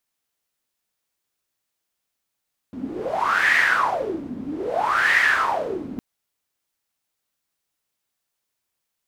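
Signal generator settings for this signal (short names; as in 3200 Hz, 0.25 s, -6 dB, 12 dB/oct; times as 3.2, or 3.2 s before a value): wind-like swept noise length 3.26 s, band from 240 Hz, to 1900 Hz, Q 9.4, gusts 2, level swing 14 dB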